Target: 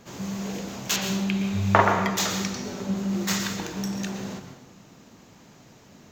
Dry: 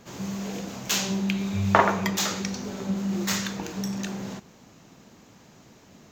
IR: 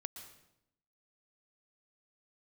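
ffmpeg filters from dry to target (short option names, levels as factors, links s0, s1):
-filter_complex "[0:a]asettb=1/sr,asplit=3[s0][s1][s2];[s0]atrim=end=0.964[s3];[s1]atrim=start=0.96:end=2.15,asetpts=PTS-STARTPTS,afade=t=in:d=0.004:c=qsin,afade=t=out:st=1.186:d=0.004:c=qsin,acrossover=split=3900[s4][s5];[s5]acompressor=threshold=0.01:ratio=4:attack=1:release=60[s6];[s4][s6]amix=inputs=2:normalize=0[s7];[s2]atrim=start=2.146[s8];[s3][s7]acrossfade=d=0.004:c1=hsin:c2=qsin[s9];[s9][s8]acrossfade=d=0.004:c1=qsin:c2=hsin[s10];[1:a]atrim=start_sample=2205[s11];[s10][s11]afir=irnorm=-1:irlink=0,volume=1.58"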